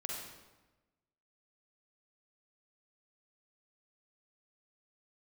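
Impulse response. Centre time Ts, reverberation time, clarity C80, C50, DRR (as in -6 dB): 72 ms, 1.1 s, 3.0 dB, -0.5 dB, -2.0 dB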